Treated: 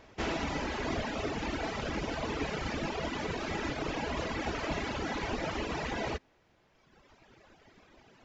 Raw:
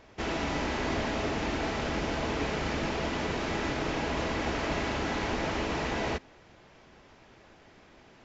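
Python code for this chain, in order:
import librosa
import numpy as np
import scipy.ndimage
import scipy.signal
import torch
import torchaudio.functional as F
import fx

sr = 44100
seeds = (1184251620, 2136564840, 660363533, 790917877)

y = fx.dereverb_blind(x, sr, rt60_s=1.8)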